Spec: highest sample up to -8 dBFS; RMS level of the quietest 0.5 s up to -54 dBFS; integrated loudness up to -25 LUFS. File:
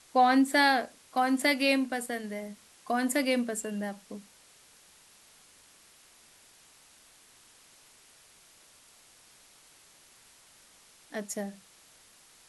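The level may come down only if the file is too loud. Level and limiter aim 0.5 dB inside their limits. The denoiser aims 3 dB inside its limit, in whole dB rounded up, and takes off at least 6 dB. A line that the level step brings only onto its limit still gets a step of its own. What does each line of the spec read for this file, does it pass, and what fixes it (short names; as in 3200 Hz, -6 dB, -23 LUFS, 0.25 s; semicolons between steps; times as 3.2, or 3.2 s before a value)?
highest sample -12.5 dBFS: OK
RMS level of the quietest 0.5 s -59 dBFS: OK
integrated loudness -28.5 LUFS: OK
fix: none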